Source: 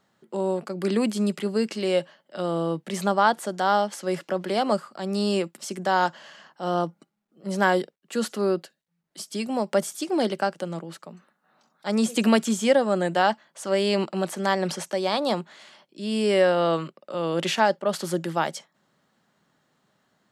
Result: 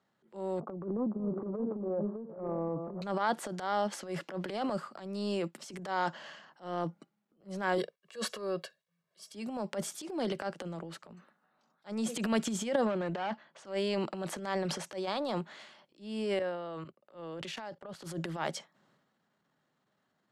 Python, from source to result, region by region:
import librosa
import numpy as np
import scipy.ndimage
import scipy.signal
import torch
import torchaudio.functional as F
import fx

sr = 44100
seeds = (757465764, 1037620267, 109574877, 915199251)

y = fx.chain(x, sr, fx.reverse_delay(ms=522, wet_db=-12.5),
    fx.steep_lowpass(hz=1200.0, slope=48),
    fx.echo_single(ms=597, db=-12.5), at=(0.6, 3.02))
y = fx.chain(y, sr, fx.low_shelf(hz=330.0, db=-7.0),
    fx.comb(ms=1.8, depth=0.96), at=(7.78, 9.33))
y = fx.chain(y, sr, fx.clip_hard(threshold_db=-21.0),
    fx.lowpass(hz=4500.0, slope=12), at=(12.85, 13.65))
y = fx.chain(y, sr, fx.level_steps(step_db=16),
    fx.band_widen(depth_pct=40), at=(16.39, 18.04))
y = scipy.signal.sosfilt(scipy.signal.butter(4, 84.0, 'highpass', fs=sr, output='sos'), y)
y = fx.high_shelf(y, sr, hz=6400.0, db=-9.5)
y = fx.transient(y, sr, attack_db=-12, sustain_db=8)
y = y * 10.0 ** (-8.5 / 20.0)